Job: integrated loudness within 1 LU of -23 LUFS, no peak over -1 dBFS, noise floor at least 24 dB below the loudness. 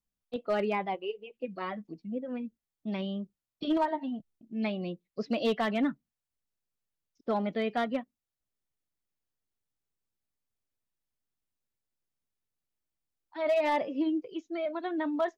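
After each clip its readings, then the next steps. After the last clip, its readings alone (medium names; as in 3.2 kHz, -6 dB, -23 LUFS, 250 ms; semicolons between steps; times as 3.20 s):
clipped samples 0.3%; clipping level -21.5 dBFS; loudness -32.5 LUFS; peak level -21.5 dBFS; loudness target -23.0 LUFS
-> clip repair -21.5 dBFS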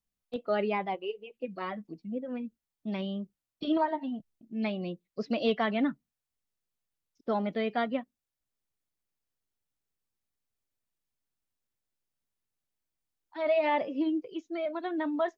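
clipped samples 0.0%; loudness -32.5 LUFS; peak level -16.0 dBFS; loudness target -23.0 LUFS
-> trim +9.5 dB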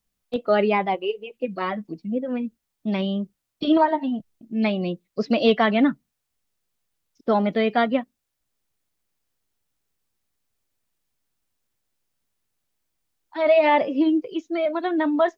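loudness -23.0 LUFS; peak level -6.5 dBFS; noise floor -80 dBFS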